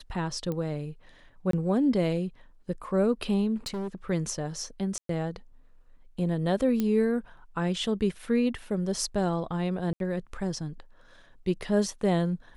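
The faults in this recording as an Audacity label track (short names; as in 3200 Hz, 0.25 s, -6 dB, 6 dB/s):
0.520000	0.520000	pop -21 dBFS
1.510000	1.530000	gap 23 ms
3.660000	3.950000	clipped -29.5 dBFS
4.980000	5.090000	gap 0.113 s
6.800000	6.800000	pop -15 dBFS
9.930000	10.000000	gap 72 ms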